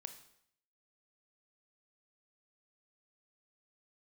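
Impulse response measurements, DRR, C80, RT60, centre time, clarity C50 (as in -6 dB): 8.0 dB, 13.5 dB, 0.70 s, 11 ms, 10.5 dB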